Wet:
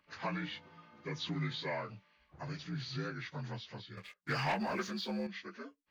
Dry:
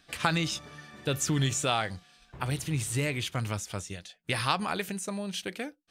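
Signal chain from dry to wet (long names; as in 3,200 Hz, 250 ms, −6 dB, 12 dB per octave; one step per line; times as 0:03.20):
partials spread apart or drawn together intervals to 81%
0:03.97–0:05.27: leveller curve on the samples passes 2
level −9 dB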